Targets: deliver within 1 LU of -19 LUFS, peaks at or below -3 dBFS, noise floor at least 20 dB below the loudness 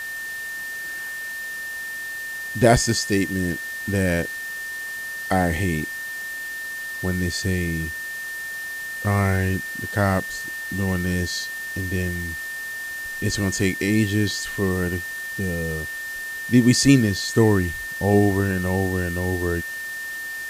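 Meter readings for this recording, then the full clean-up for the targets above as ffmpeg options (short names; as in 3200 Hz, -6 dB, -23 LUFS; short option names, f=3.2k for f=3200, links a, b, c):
steady tone 1800 Hz; tone level -29 dBFS; noise floor -32 dBFS; noise floor target -44 dBFS; loudness -23.5 LUFS; peak -3.0 dBFS; loudness target -19.0 LUFS
-> -af "bandreject=f=1.8k:w=30"
-af "afftdn=nr=12:nf=-32"
-af "volume=4.5dB,alimiter=limit=-3dB:level=0:latency=1"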